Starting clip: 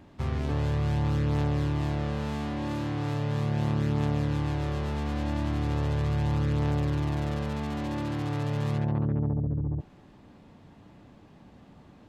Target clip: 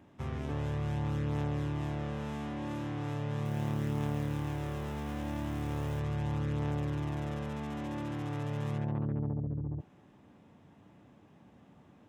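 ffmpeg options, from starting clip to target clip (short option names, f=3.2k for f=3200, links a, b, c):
-filter_complex "[0:a]asettb=1/sr,asplit=3[a][b][c];[a]atrim=end=3.454[d];[b]atrim=start=3.45:end=6,asetpts=PTS-STARTPTS,afade=t=in:d=0.004:c=qsin,afade=t=out:st=2.546:d=0.004:c=qsin,acrusher=bits=6:mode=log:mix=0:aa=0.000001[e];[c]atrim=start=5.996[f];[d][e]acrossfade=d=0.004:c1=hsin:c2=qsin[g];[g][f]acrossfade=d=0.004:c1=qsin:c2=hsin,highpass=84,equalizer=f=4.4k:t=o:w=0.31:g=-9.5,volume=-5.5dB"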